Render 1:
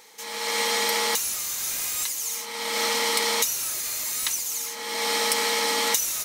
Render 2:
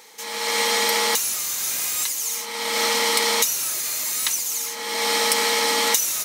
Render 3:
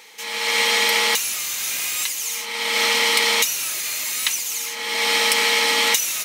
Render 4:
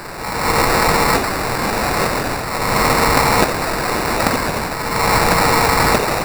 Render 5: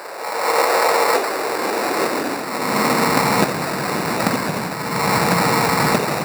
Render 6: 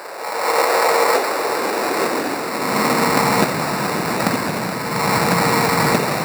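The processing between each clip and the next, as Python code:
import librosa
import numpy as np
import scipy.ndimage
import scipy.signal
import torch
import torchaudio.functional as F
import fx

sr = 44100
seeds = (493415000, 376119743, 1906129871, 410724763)

y1 = scipy.signal.sosfilt(scipy.signal.butter(2, 110.0, 'highpass', fs=sr, output='sos'), x)
y1 = F.gain(torch.from_numpy(y1), 3.5).numpy()
y2 = fx.peak_eq(y1, sr, hz=2600.0, db=9.0, octaves=1.1)
y2 = F.gain(torch.from_numpy(y2), -1.5).numpy()
y3 = fx.quant_dither(y2, sr, seeds[0], bits=6, dither='triangular')
y3 = y3 + 10.0 ** (-8.5 / 20.0) * np.pad(y3, (int(1048 * sr / 1000.0), 0))[:len(y3)]
y3 = fx.sample_hold(y3, sr, seeds[1], rate_hz=3200.0, jitter_pct=0)
y3 = F.gain(torch.from_numpy(y3), 4.5).numpy()
y4 = fx.filter_sweep_highpass(y3, sr, from_hz=510.0, to_hz=160.0, start_s=0.92, end_s=3.49, q=2.0)
y4 = F.gain(torch.from_numpy(y4), -3.5).numpy()
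y5 = y4 + 10.0 ** (-9.5 / 20.0) * np.pad(y4, (int(423 * sr / 1000.0), 0))[:len(y4)]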